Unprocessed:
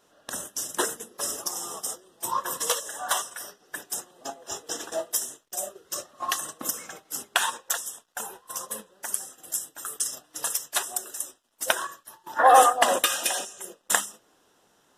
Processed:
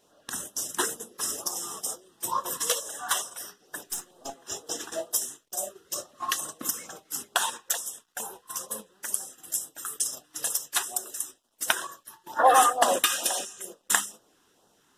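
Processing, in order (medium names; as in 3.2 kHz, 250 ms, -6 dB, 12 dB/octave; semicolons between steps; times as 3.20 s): 3.87–4.34 s: partial rectifier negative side -3 dB; LFO notch sine 2.2 Hz 530–2300 Hz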